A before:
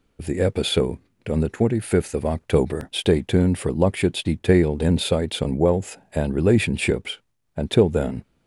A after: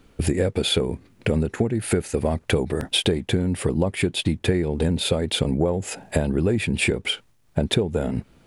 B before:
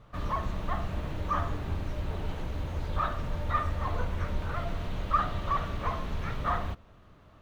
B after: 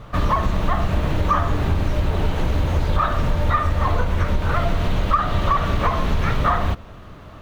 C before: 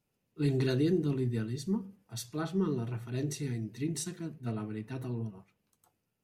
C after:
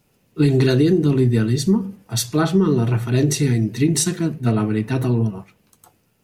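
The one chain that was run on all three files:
compression 10:1, threshold -30 dBFS; peak normalisation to -6 dBFS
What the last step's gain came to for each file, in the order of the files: +12.0 dB, +16.0 dB, +18.5 dB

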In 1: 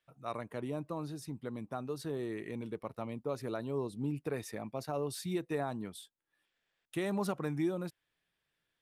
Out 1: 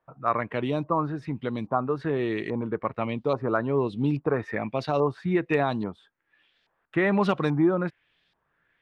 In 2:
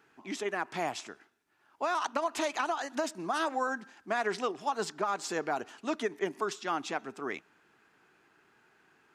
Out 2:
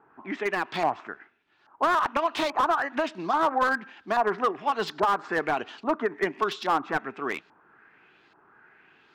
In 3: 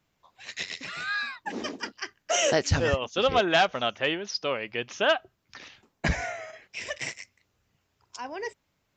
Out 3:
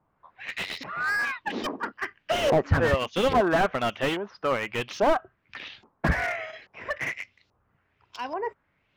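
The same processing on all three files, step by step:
LFO low-pass saw up 1.2 Hz 910–4600 Hz; dynamic bell 1.1 kHz, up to +4 dB, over -49 dBFS, Q 7.7; slew-rate limiter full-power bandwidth 73 Hz; normalise loudness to -27 LUFS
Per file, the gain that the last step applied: +10.5 dB, +4.5 dB, +2.0 dB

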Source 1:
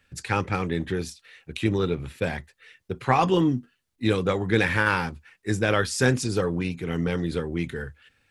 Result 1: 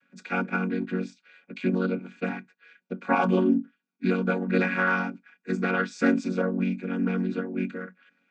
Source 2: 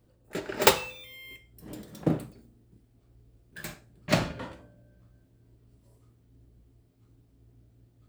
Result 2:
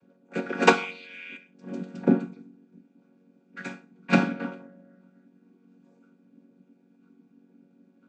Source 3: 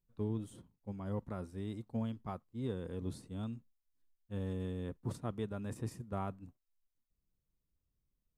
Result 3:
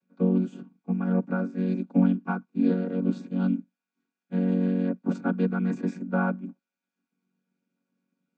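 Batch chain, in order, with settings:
vocoder on a held chord major triad, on F#3; small resonant body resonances 1.5/2.4 kHz, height 16 dB, ringing for 30 ms; normalise loudness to -27 LUFS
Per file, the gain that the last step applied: -1.0 dB, +4.0 dB, +16.0 dB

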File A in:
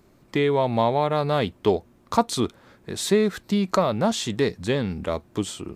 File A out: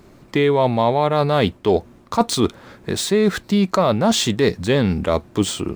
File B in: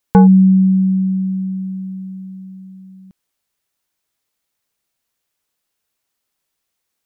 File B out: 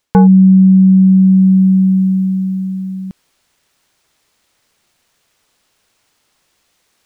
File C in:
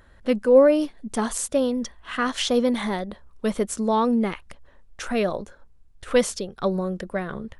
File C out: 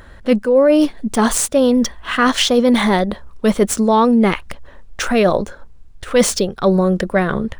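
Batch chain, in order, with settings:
median filter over 3 samples; reverse; compression 6:1, threshold -23 dBFS; reverse; peak normalisation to -2 dBFS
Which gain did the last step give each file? +10.0 dB, +16.5 dB, +13.5 dB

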